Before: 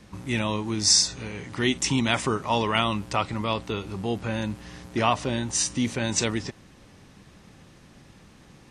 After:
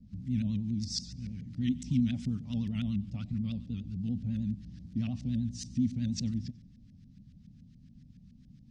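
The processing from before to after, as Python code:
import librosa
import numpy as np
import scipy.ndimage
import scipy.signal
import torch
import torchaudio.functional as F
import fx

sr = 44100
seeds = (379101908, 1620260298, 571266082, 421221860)

y = fx.echo_feedback(x, sr, ms=93, feedback_pct=46, wet_db=-18)
y = fx.vibrato(y, sr, rate_hz=10.0, depth_cents=96.0)
y = fx.peak_eq(y, sr, hz=1000.0, db=-15.0, octaves=0.84)
y = fx.filter_lfo_lowpass(y, sr, shape='saw_up', hz=7.1, low_hz=530.0, high_hz=1600.0, q=3.1)
y = fx.curve_eq(y, sr, hz=(250.0, 360.0, 1300.0, 4900.0), db=(0, -29, -29, 12))
y = F.gain(torch.from_numpy(y), -2.0).numpy()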